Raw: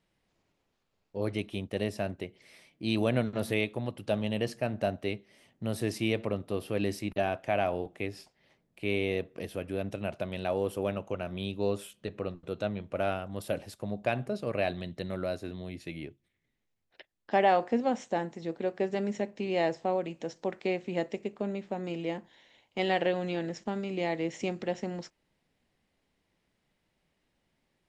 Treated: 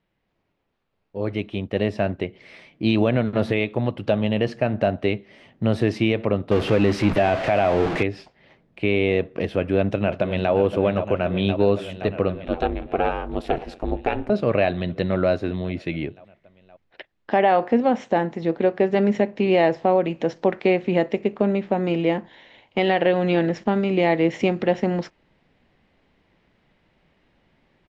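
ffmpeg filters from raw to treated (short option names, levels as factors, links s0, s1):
-filter_complex "[0:a]asettb=1/sr,asplit=3[s0][s1][s2];[s0]atrim=end=6.514[s3];[s1]atrim=start=6.51:end=8.03,asetpts=PTS-STARTPTS,afade=t=in:d=0.004:c=qsin,afade=t=out:st=1.516:d=0.004:c=qsin,aeval=exprs='val(0)+0.5*0.0237*sgn(val(0))':c=same[s4];[s2]atrim=start=8.026[s5];[s3][s4]acrossfade=d=0.004:c1=hsin:c2=qsin[s6];[s6][s5]acrossfade=d=0.004:c1=qsin:c2=hsin,asplit=2[s7][s8];[s8]afade=t=in:st=9.54:d=0.01,afade=t=out:st=10.52:d=0.01,aecho=0:1:520|1040|1560|2080|2600|3120|3640|4160|4680|5200|5720|6240:0.298538|0.238831|0.191064|0.152852|0.122281|0.097825|0.07826|0.062608|0.0500864|0.0400691|0.0320553|0.0256442[s9];[s7][s9]amix=inputs=2:normalize=0,asettb=1/sr,asplit=3[s10][s11][s12];[s10]atrim=end=12.454[s13];[s11]atrim=start=12.45:end=14.3,asetpts=PTS-STARTPTS,afade=t=in:d=0.004:c=qsin,afade=t=out:st=1.846:d=0.004:c=qsin,aeval=exprs='val(0)*sin(2*PI*140*n/s)':c=same[s14];[s12]atrim=start=14.296[s15];[s13][s14]acrossfade=d=0.004:c1=hsin:c2=qsin[s16];[s16][s15]acrossfade=d=0.004:c1=qsin:c2=hsin,lowpass=3100,dynaudnorm=f=490:g=7:m=3.98,alimiter=limit=0.299:level=0:latency=1:release=237,volume=1.26"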